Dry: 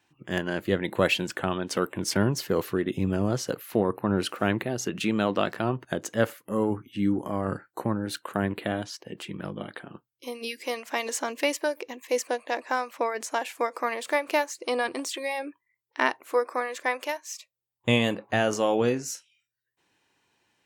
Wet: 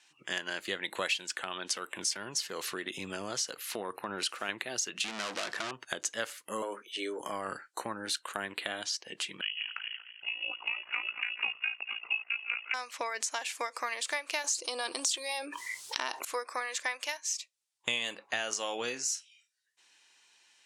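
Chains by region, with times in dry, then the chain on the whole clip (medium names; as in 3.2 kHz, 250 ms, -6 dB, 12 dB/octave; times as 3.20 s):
1.36–4.49 s: high-pass 44 Hz + compression 1.5:1, threshold -29 dBFS
5.04–5.71 s: treble shelf 2.8 kHz -11.5 dB + hard clipper -23.5 dBFS + waveshaping leveller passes 3
6.62–7.20 s: high-pass 240 Hz 6 dB/octave + frequency shift +100 Hz
9.41–12.74 s: backward echo that repeats 120 ms, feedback 62%, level -13 dB + frequency inversion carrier 3.1 kHz + AM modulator 56 Hz, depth 65%
14.44–16.25 s: peaking EQ 2 kHz -10 dB 0.83 oct + level flattener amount 70%
whole clip: frequency weighting ITU-R 468; compression 3:1, threshold -33 dBFS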